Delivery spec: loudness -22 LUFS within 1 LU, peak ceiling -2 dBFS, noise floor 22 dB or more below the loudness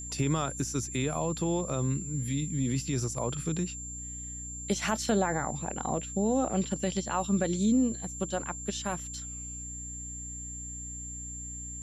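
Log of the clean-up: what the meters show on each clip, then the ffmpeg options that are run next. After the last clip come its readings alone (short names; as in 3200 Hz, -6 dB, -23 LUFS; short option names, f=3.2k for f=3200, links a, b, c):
hum 60 Hz; harmonics up to 300 Hz; hum level -42 dBFS; steady tone 7300 Hz; tone level -39 dBFS; loudness -31.5 LUFS; peak -15.0 dBFS; loudness target -22.0 LUFS
-> -af "bandreject=f=60:t=h:w=4,bandreject=f=120:t=h:w=4,bandreject=f=180:t=h:w=4,bandreject=f=240:t=h:w=4,bandreject=f=300:t=h:w=4"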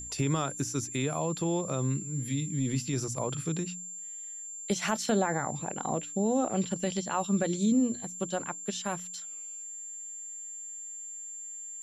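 hum none; steady tone 7300 Hz; tone level -39 dBFS
-> -af "bandreject=f=7.3k:w=30"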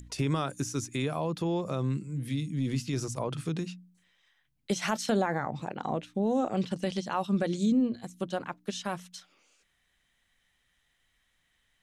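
steady tone none; loudness -31.5 LUFS; peak -16.0 dBFS; loudness target -22.0 LUFS
-> -af "volume=9.5dB"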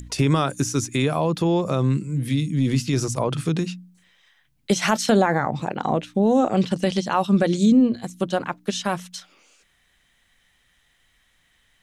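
loudness -22.0 LUFS; peak -6.5 dBFS; noise floor -64 dBFS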